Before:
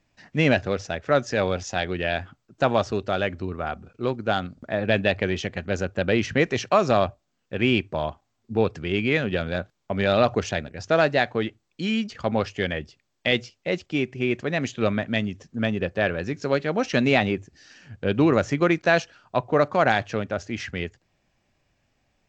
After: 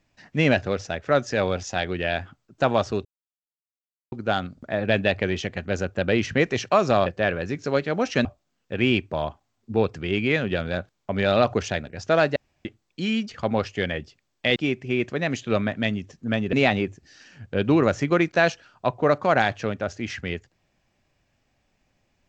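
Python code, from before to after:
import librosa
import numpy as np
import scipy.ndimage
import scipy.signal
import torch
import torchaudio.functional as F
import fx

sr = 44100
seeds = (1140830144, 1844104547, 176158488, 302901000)

y = fx.edit(x, sr, fx.silence(start_s=3.05, length_s=1.07),
    fx.room_tone_fill(start_s=11.17, length_s=0.29),
    fx.cut(start_s=13.37, length_s=0.5),
    fx.move(start_s=15.84, length_s=1.19, to_s=7.06), tone=tone)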